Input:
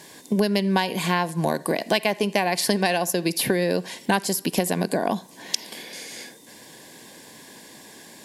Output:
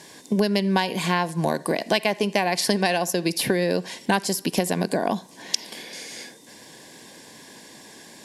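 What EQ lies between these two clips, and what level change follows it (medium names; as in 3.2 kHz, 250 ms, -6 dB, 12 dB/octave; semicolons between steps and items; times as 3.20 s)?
low-pass 11 kHz 12 dB/octave; peaking EQ 5.5 kHz +2.5 dB 0.27 oct; 0.0 dB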